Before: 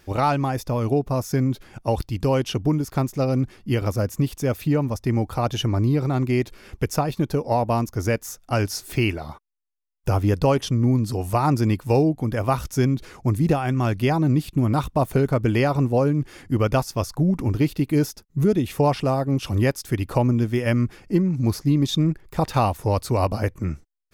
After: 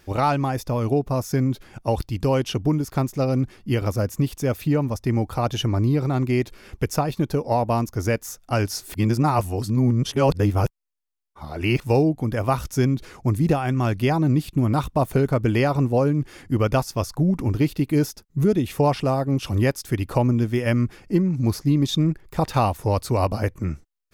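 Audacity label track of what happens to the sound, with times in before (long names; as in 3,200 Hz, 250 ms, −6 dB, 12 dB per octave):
8.940000	11.800000	reverse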